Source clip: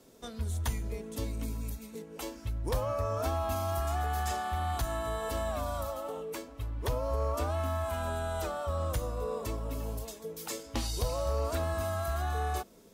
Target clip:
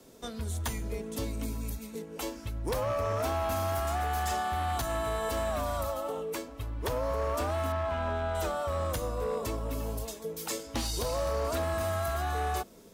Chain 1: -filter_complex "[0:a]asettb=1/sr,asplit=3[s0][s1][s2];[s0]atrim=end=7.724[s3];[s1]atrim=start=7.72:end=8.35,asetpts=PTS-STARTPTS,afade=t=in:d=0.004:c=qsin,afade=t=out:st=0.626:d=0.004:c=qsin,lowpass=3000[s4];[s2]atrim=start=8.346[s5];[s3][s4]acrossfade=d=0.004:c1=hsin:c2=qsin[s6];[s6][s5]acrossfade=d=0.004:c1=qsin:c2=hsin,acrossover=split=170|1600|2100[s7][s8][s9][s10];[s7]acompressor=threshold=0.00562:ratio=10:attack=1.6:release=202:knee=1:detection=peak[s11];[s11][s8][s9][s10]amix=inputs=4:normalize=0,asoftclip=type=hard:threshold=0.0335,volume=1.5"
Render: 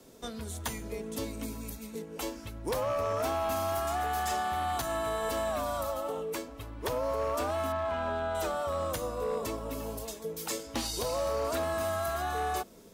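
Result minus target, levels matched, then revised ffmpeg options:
compression: peak gain reduction +8.5 dB
-filter_complex "[0:a]asettb=1/sr,asplit=3[s0][s1][s2];[s0]atrim=end=7.724[s3];[s1]atrim=start=7.72:end=8.35,asetpts=PTS-STARTPTS,afade=t=in:d=0.004:c=qsin,afade=t=out:st=0.626:d=0.004:c=qsin,lowpass=3000[s4];[s2]atrim=start=8.346[s5];[s3][s4]acrossfade=d=0.004:c1=hsin:c2=qsin[s6];[s6][s5]acrossfade=d=0.004:c1=qsin:c2=hsin,acrossover=split=170|1600|2100[s7][s8][s9][s10];[s7]acompressor=threshold=0.0168:ratio=10:attack=1.6:release=202:knee=1:detection=peak[s11];[s11][s8][s9][s10]amix=inputs=4:normalize=0,asoftclip=type=hard:threshold=0.0335,volume=1.5"

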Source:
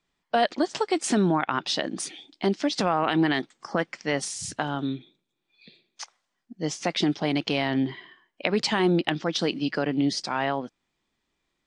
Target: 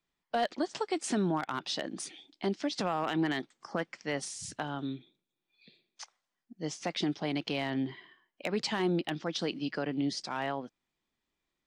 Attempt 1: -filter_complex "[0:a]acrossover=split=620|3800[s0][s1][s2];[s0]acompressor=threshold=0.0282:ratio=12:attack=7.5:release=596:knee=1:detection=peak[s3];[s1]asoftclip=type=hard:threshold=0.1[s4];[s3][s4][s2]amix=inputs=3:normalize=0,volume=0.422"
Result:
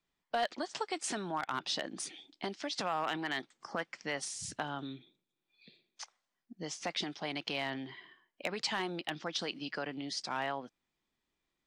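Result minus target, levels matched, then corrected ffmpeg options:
compression: peak gain reduction +14 dB
-filter_complex "[0:a]acrossover=split=620|3800[s0][s1][s2];[s1]asoftclip=type=hard:threshold=0.1[s3];[s0][s3][s2]amix=inputs=3:normalize=0,volume=0.422"

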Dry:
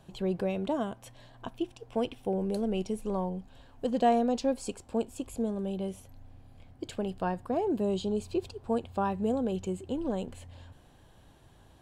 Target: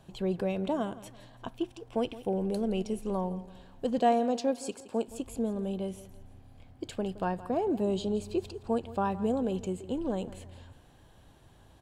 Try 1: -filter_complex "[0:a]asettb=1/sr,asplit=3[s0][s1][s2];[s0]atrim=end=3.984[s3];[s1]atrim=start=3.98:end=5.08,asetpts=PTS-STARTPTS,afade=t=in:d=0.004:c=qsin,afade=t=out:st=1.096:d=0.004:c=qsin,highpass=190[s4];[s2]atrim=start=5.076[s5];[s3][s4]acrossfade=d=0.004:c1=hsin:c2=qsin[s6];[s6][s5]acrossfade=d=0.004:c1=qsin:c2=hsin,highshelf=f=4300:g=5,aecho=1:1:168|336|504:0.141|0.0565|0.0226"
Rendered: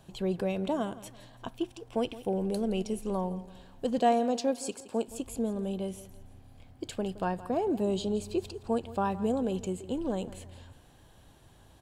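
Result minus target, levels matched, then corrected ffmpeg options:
8 kHz band +4.0 dB
-filter_complex "[0:a]asettb=1/sr,asplit=3[s0][s1][s2];[s0]atrim=end=3.984[s3];[s1]atrim=start=3.98:end=5.08,asetpts=PTS-STARTPTS,afade=t=in:d=0.004:c=qsin,afade=t=out:st=1.096:d=0.004:c=qsin,highpass=190[s4];[s2]atrim=start=5.076[s5];[s3][s4]acrossfade=d=0.004:c1=hsin:c2=qsin[s6];[s6][s5]acrossfade=d=0.004:c1=qsin:c2=hsin,aecho=1:1:168|336|504:0.141|0.0565|0.0226"

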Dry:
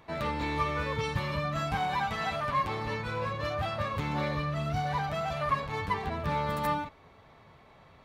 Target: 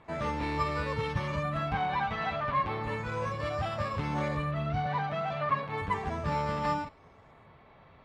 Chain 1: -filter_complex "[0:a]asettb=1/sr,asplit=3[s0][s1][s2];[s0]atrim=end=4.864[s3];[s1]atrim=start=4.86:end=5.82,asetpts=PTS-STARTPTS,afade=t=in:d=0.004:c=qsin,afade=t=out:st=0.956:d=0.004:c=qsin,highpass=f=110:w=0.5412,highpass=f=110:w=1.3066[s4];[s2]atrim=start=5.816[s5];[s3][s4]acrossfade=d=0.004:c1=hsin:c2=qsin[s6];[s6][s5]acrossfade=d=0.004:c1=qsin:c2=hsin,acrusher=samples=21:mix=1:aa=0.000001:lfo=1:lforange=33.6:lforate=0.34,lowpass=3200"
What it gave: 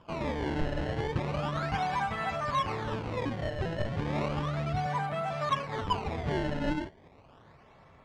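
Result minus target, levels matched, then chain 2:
decimation with a swept rate: distortion +13 dB
-filter_complex "[0:a]asettb=1/sr,asplit=3[s0][s1][s2];[s0]atrim=end=4.864[s3];[s1]atrim=start=4.86:end=5.82,asetpts=PTS-STARTPTS,afade=t=in:d=0.004:c=qsin,afade=t=out:st=0.956:d=0.004:c=qsin,highpass=f=110:w=0.5412,highpass=f=110:w=1.3066[s4];[s2]atrim=start=5.816[s5];[s3][s4]acrossfade=d=0.004:c1=hsin:c2=qsin[s6];[s6][s5]acrossfade=d=0.004:c1=qsin:c2=hsin,acrusher=samples=4:mix=1:aa=0.000001:lfo=1:lforange=6.4:lforate=0.34,lowpass=3200"

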